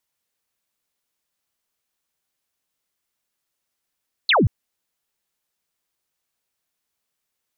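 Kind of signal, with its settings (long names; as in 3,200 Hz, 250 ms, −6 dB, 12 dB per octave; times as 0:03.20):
single falling chirp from 4,500 Hz, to 81 Hz, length 0.18 s sine, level −13 dB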